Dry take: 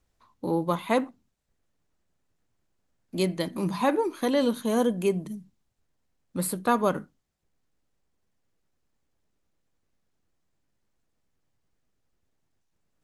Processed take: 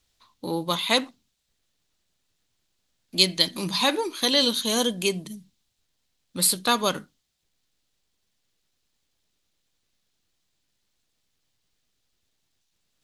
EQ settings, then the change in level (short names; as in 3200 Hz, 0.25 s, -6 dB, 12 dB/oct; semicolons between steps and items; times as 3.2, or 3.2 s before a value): high shelf 2200 Hz +10.5 dB; bell 3700 Hz +8.5 dB 1.1 oct; dynamic EQ 5000 Hz, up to +7 dB, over -38 dBFS, Q 0.81; -2.5 dB